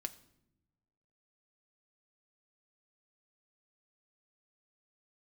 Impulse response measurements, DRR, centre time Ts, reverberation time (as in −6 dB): 7.5 dB, 5 ms, non-exponential decay